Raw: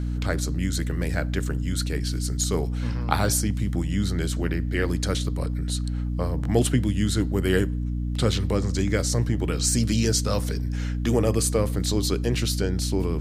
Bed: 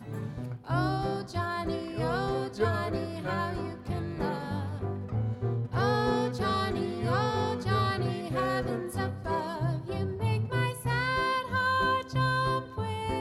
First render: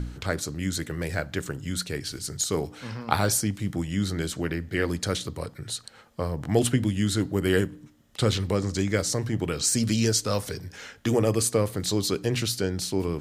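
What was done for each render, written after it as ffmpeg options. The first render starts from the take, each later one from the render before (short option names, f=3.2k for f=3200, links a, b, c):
-af "bandreject=f=60:t=h:w=4,bandreject=f=120:t=h:w=4,bandreject=f=180:t=h:w=4,bandreject=f=240:t=h:w=4,bandreject=f=300:t=h:w=4"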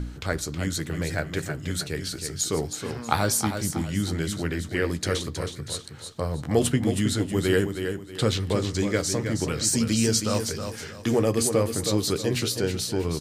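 -filter_complex "[0:a]asplit=2[a][b];[b]adelay=13,volume=-12.5dB[c];[a][c]amix=inputs=2:normalize=0,aecho=1:1:319|638|957|1276:0.422|0.131|0.0405|0.0126"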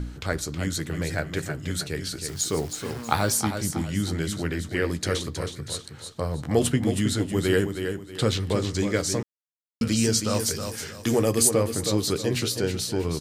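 -filter_complex "[0:a]asettb=1/sr,asplit=3[a][b][c];[a]atrim=end=2.284[d];[b]atrim=start=2.28:end=3.4,asetpts=PTS-STARTPTS,afade=t=in:d=0.004:c=qsin,afade=t=out:st=1.116:d=0.004:c=qsin,acrusher=bits=8:dc=4:mix=0:aa=0.000001[e];[c]atrim=start=3.396[f];[d][e]acrossfade=d=0.004:c1=hsin:c2=qsin[g];[g][f]acrossfade=d=0.004:c1=qsin:c2=hsin,asettb=1/sr,asplit=3[h][i][j];[h]atrim=end=10.394[k];[i]atrim=start=10.39:end=11.51,asetpts=PTS-STARTPTS,afade=t=in:d=0.004:c=qsin,afade=t=out:st=1.116:d=0.004:c=qsin,highshelf=f=6.2k:g=9.5[l];[j]atrim=start=11.506[m];[k][l]acrossfade=d=0.004:c1=hsin:c2=qsin[n];[n][m]acrossfade=d=0.004:c1=qsin:c2=hsin,asplit=3[o][p][q];[o]atrim=end=9.23,asetpts=PTS-STARTPTS,afade=t=out:st=9.226:d=0.004:c=hsin[r];[p]atrim=start=9.23:end=9.81,asetpts=PTS-STARTPTS,volume=0[s];[q]atrim=start=9.81,asetpts=PTS-STARTPTS,afade=t=in:d=0.004:c=hsin[t];[r][s][t]concat=n=3:v=0:a=1"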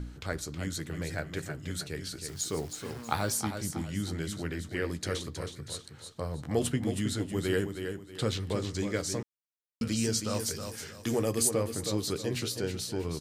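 -af "volume=-7dB"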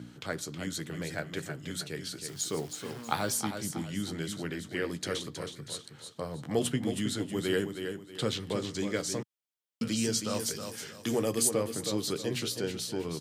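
-af "highpass=f=120:w=0.5412,highpass=f=120:w=1.3066,equalizer=f=3.2k:w=4.9:g=4.5"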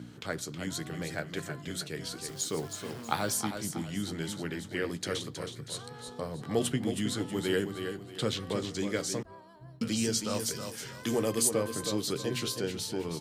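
-filter_complex "[1:a]volume=-20.5dB[a];[0:a][a]amix=inputs=2:normalize=0"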